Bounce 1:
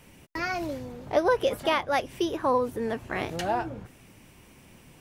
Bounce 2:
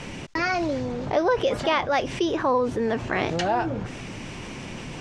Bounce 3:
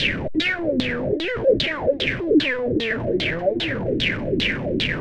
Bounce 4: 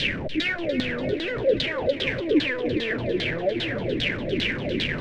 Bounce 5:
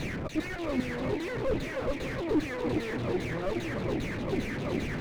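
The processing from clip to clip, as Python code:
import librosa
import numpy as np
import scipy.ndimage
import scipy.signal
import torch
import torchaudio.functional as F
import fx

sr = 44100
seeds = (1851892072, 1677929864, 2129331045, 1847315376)

y1 = scipy.signal.sosfilt(scipy.signal.butter(4, 6900.0, 'lowpass', fs=sr, output='sos'), x)
y1 = fx.peak_eq(y1, sr, hz=68.0, db=-8.0, octaves=0.51)
y1 = fx.env_flatten(y1, sr, amount_pct=50)
y2 = np.sign(y1) * np.sqrt(np.mean(np.square(y1)))
y2 = fx.band_shelf(y2, sr, hz=990.0, db=-15.5, octaves=1.1)
y2 = fx.filter_lfo_lowpass(y2, sr, shape='saw_down', hz=2.5, low_hz=260.0, high_hz=4000.0, q=7.5)
y3 = fx.echo_feedback(y2, sr, ms=292, feedback_pct=56, wet_db=-12.0)
y3 = y3 * librosa.db_to_amplitude(-4.0)
y4 = fx.lower_of_two(y3, sr, delay_ms=0.48)
y4 = fx.slew_limit(y4, sr, full_power_hz=36.0)
y4 = y4 * librosa.db_to_amplitude(-3.0)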